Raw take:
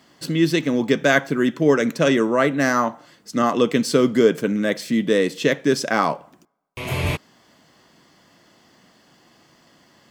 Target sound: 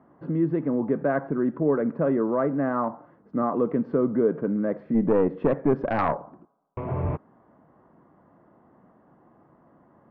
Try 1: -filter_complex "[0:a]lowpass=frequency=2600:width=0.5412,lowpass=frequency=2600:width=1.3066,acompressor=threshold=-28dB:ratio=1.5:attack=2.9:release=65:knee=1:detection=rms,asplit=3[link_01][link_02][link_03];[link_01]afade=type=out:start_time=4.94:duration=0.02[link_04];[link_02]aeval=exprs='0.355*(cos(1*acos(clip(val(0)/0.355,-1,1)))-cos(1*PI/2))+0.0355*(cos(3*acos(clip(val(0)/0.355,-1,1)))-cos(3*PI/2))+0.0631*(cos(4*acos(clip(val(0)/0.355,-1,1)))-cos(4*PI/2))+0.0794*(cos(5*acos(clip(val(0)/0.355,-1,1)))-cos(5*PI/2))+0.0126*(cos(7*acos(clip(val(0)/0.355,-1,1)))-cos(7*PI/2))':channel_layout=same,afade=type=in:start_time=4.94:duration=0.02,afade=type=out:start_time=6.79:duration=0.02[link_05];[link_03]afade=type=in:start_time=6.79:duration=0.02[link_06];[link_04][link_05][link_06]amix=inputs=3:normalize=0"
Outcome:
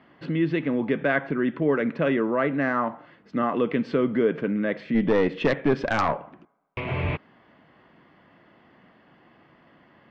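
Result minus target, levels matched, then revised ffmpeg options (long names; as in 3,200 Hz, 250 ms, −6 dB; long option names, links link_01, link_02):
2,000 Hz band +9.5 dB
-filter_complex "[0:a]lowpass=frequency=1200:width=0.5412,lowpass=frequency=1200:width=1.3066,acompressor=threshold=-28dB:ratio=1.5:attack=2.9:release=65:knee=1:detection=rms,asplit=3[link_01][link_02][link_03];[link_01]afade=type=out:start_time=4.94:duration=0.02[link_04];[link_02]aeval=exprs='0.355*(cos(1*acos(clip(val(0)/0.355,-1,1)))-cos(1*PI/2))+0.0355*(cos(3*acos(clip(val(0)/0.355,-1,1)))-cos(3*PI/2))+0.0631*(cos(4*acos(clip(val(0)/0.355,-1,1)))-cos(4*PI/2))+0.0794*(cos(5*acos(clip(val(0)/0.355,-1,1)))-cos(5*PI/2))+0.0126*(cos(7*acos(clip(val(0)/0.355,-1,1)))-cos(7*PI/2))':channel_layout=same,afade=type=in:start_time=4.94:duration=0.02,afade=type=out:start_time=6.79:duration=0.02[link_05];[link_03]afade=type=in:start_time=6.79:duration=0.02[link_06];[link_04][link_05][link_06]amix=inputs=3:normalize=0"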